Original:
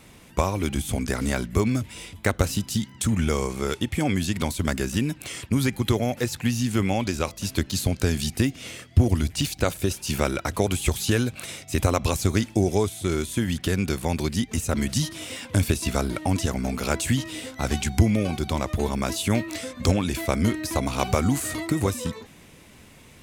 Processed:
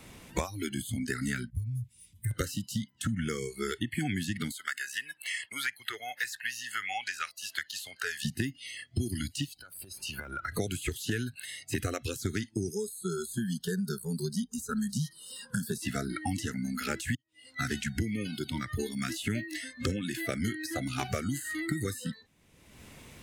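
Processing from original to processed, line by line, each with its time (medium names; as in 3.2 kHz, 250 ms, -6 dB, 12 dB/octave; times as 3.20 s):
1.50–2.31 s: FFT filter 110 Hz 0 dB, 580 Hz -30 dB, 2.1 kHz -20 dB, 11 kHz -8 dB
4.51–8.25 s: high-pass 720 Hz
9.44–10.52 s: compression 8:1, threshold -32 dBFS
12.71–15.82 s: static phaser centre 450 Hz, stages 8
17.15–17.58 s: fade in quadratic
whole clip: spectral noise reduction 23 dB; dynamic bell 1.8 kHz, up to +7 dB, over -49 dBFS, Q 3.8; three bands compressed up and down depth 100%; trim -8 dB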